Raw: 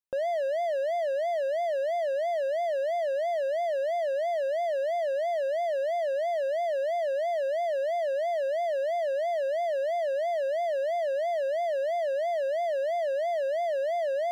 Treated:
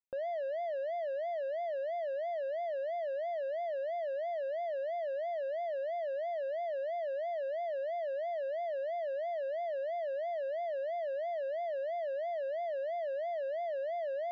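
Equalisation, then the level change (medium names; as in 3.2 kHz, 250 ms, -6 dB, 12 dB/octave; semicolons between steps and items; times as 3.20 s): distance through air 210 m; -7.0 dB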